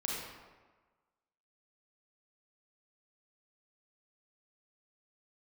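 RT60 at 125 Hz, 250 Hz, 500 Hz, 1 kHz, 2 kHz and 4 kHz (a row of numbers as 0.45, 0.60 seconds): 1.2, 1.3, 1.3, 1.4, 1.1, 0.80 seconds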